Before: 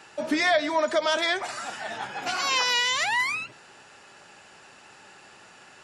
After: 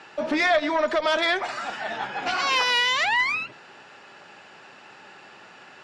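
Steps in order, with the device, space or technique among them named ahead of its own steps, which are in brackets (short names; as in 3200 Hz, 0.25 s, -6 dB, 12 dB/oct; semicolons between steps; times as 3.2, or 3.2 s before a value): valve radio (BPF 130–4100 Hz; tube stage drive 15 dB, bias 0.25; core saturation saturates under 690 Hz); gain +4.5 dB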